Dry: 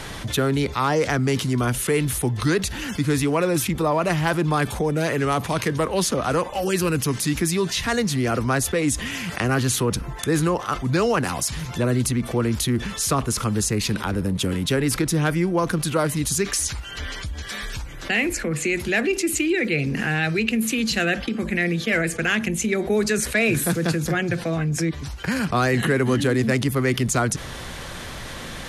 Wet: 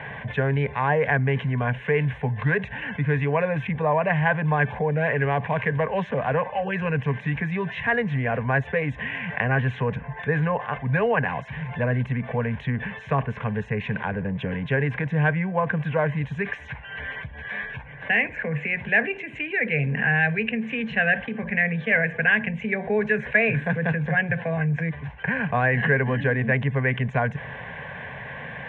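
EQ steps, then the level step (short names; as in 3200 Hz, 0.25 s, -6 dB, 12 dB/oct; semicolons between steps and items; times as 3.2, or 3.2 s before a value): speaker cabinet 120–2600 Hz, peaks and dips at 140 Hz +6 dB, 420 Hz +9 dB, 1100 Hz +4 dB, 1600 Hz +10 dB; fixed phaser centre 1300 Hz, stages 6; 0.0 dB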